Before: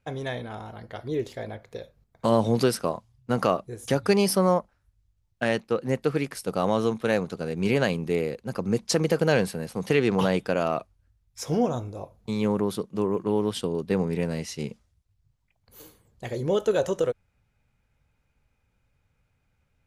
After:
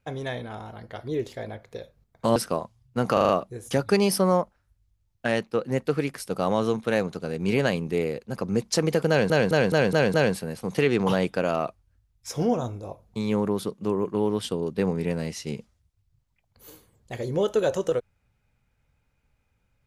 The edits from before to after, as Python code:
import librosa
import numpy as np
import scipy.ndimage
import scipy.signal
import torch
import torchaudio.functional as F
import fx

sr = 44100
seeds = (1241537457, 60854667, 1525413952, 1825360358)

y = fx.edit(x, sr, fx.cut(start_s=2.36, length_s=0.33),
    fx.stutter(start_s=3.46, slice_s=0.04, count=5),
    fx.stutter(start_s=9.26, slice_s=0.21, count=6), tone=tone)